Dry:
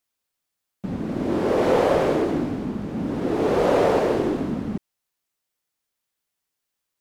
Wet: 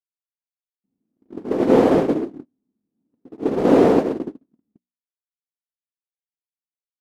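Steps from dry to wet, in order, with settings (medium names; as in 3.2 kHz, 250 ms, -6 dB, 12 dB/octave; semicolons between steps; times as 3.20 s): hum notches 60/120/180/240/300/360/420/480/540 Hz; gate -19 dBFS, range -59 dB; peaking EQ 260 Hz +14.5 dB 1.5 oct; band-stop 580 Hz, Q 15; trim -1 dB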